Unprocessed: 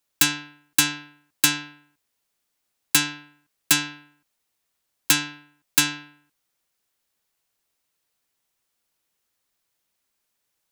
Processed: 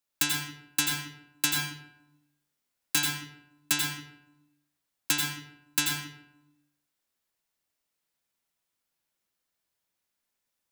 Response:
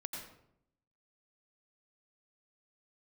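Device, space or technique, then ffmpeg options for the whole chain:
bathroom: -filter_complex "[1:a]atrim=start_sample=2205[a];[0:a][a]afir=irnorm=-1:irlink=0,asettb=1/sr,asplit=3[b][c][d];[b]atrim=end=1.524[e];[c]atrim=start=1.52:end=3.07,asetpts=PTS-STARTPTS,afade=t=in:d=0.004:c=qsin,afade=t=out:st=1.546:d=0.004:c=qsin,asplit=2[f][g];[g]adelay=26,volume=-7dB[h];[f][h]amix=inputs=2:normalize=0,atrim=end_sample=68355[i];[d]atrim=start=3.066[j];[e][i]acrossfade=d=0.004:c1=hsin:c2=qsin[k];[k][j]acrossfade=d=0.004:c1=qsin:c2=hsin,volume=-4.5dB"

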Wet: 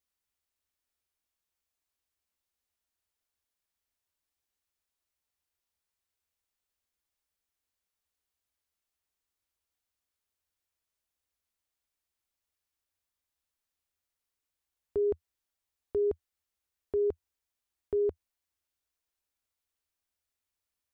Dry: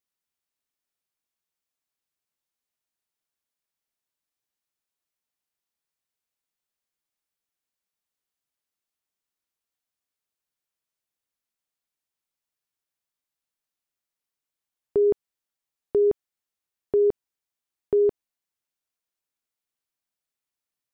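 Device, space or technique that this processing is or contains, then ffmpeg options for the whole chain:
car stereo with a boomy subwoofer: -af "lowshelf=f=100:t=q:w=3:g=6.5,alimiter=limit=-23.5dB:level=0:latency=1:release=87"

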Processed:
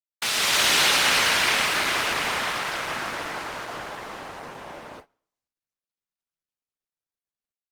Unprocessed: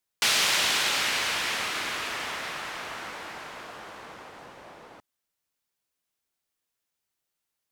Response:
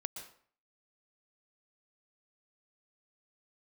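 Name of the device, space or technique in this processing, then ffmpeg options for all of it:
speakerphone in a meeting room: -filter_complex "[1:a]atrim=start_sample=2205[a];[0:a][a]afir=irnorm=-1:irlink=0,asplit=2[b][c];[c]adelay=250,highpass=300,lowpass=3.4k,asoftclip=type=hard:threshold=-20dB,volume=-25dB[d];[b][d]amix=inputs=2:normalize=0,dynaudnorm=f=210:g=5:m=10.5dB,agate=range=-26dB:threshold=-40dB:ratio=16:detection=peak" -ar 48000 -c:a libopus -b:a 20k

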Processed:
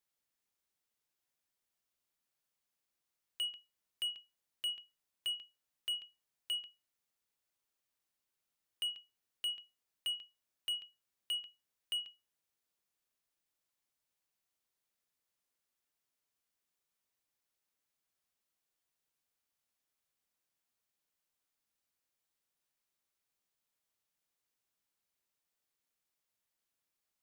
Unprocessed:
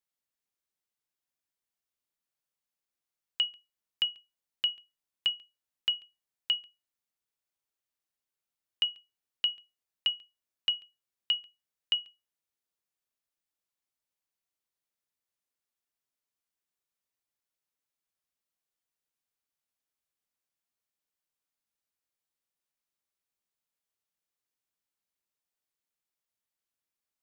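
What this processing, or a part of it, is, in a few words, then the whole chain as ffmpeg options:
saturation between pre-emphasis and de-emphasis: -af "highshelf=f=4.6k:g=6.5,asoftclip=type=tanh:threshold=-34dB,highshelf=f=4.6k:g=-6.5,volume=2.5dB"

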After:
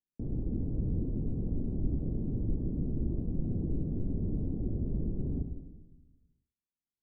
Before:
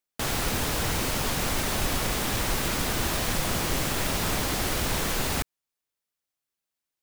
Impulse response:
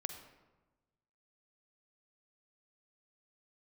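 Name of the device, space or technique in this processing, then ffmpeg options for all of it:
next room: -filter_complex "[0:a]lowpass=f=330:w=0.5412,lowpass=f=330:w=1.3066[a];[1:a]atrim=start_sample=2205[b];[a][b]afir=irnorm=-1:irlink=0"

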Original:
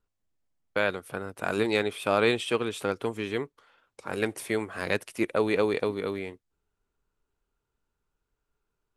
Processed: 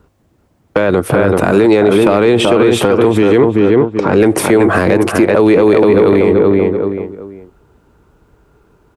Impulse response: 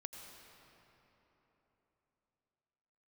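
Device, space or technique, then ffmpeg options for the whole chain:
mastering chain: -filter_complex "[0:a]asettb=1/sr,asplit=3[a][b][c];[a]atrim=end=3.384[d];[b]atrim=start=3.38:end=4.21,asetpts=PTS-STARTPTS,afade=t=in:d=0.004:c=qsin,afade=t=out:st=0.826:d=0.004:c=qsin,lowpass=f=6.2k:w=0.5412,lowpass=f=6.2k:w=1.3066[e];[c]atrim=start=4.206[f];[d][e]acrossfade=d=0.004:c1=hsin:c2=qsin[g];[g][f]acrossfade=d=0.004:c1=qsin:c2=hsin,highpass=55,equalizer=f=330:t=o:w=0.2:g=4,asplit=2[h][i];[i]adelay=382,lowpass=f=2.6k:p=1,volume=-8dB,asplit=2[j][k];[k]adelay=382,lowpass=f=2.6k:p=1,volume=0.26,asplit=2[l][m];[m]adelay=382,lowpass=f=2.6k:p=1,volume=0.26[n];[h][j][l][n]amix=inputs=4:normalize=0,acrossover=split=480|1400[o][p][q];[o]acompressor=threshold=-32dB:ratio=4[r];[p]acompressor=threshold=-33dB:ratio=4[s];[q]acompressor=threshold=-33dB:ratio=4[t];[r][s][t]amix=inputs=3:normalize=0,acompressor=threshold=-31dB:ratio=2.5,asoftclip=type=tanh:threshold=-22.5dB,tiltshelf=f=1.5k:g=7.5,asoftclip=type=hard:threshold=-19.5dB,alimiter=level_in=28.5dB:limit=-1dB:release=50:level=0:latency=1,volume=-1dB"

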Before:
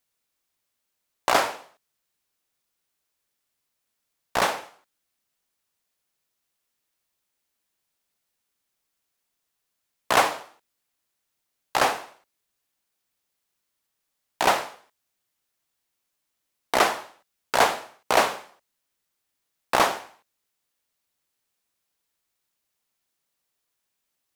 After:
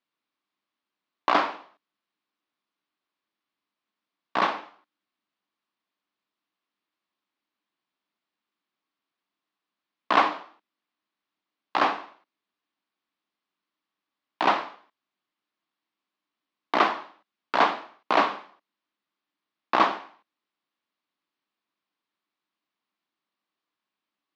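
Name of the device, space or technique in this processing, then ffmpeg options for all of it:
kitchen radio: -af "highpass=200,equalizer=f=200:t=q:w=4:g=7,equalizer=f=300:t=q:w=4:g=9,equalizer=f=500:t=q:w=4:g=-4,equalizer=f=1.1k:t=q:w=4:g=7,lowpass=f=4.2k:w=0.5412,lowpass=f=4.2k:w=1.3066,volume=-3dB"

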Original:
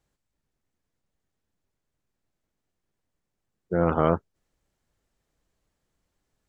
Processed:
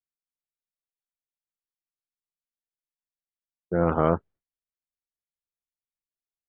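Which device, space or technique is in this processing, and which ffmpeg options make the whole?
hearing-loss simulation: -af "lowpass=2.5k,agate=range=-33dB:threshold=-41dB:ratio=3:detection=peak"

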